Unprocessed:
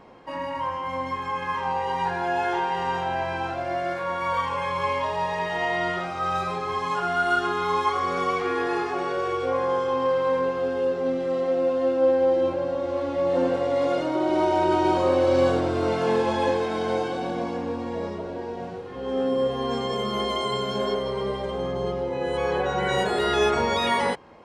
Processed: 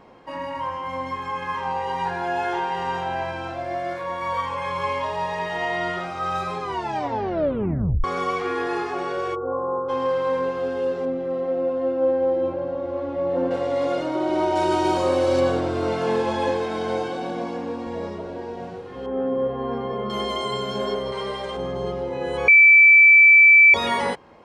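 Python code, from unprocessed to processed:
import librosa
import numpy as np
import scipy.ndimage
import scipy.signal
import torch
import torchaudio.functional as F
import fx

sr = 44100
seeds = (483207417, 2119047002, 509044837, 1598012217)

y = fx.notch_comb(x, sr, f0_hz=200.0, at=(3.31, 4.65))
y = fx.cheby_ripple(y, sr, hz=1400.0, ripple_db=3, at=(9.34, 9.88), fade=0.02)
y = fx.lowpass(y, sr, hz=1200.0, slope=6, at=(11.05, 13.51))
y = fx.high_shelf(y, sr, hz=fx.line((14.55, 4200.0), (15.39, 6700.0)), db=11.5, at=(14.55, 15.39), fade=0.02)
y = fx.highpass(y, sr, hz=120.0, slope=12, at=(17.09, 17.87))
y = fx.lowpass(y, sr, hz=1600.0, slope=12, at=(19.06, 20.1))
y = fx.tilt_shelf(y, sr, db=-6.0, hz=640.0, at=(21.12, 21.57))
y = fx.edit(y, sr, fx.tape_stop(start_s=6.61, length_s=1.43),
    fx.bleep(start_s=22.48, length_s=1.26, hz=2320.0, db=-8.0), tone=tone)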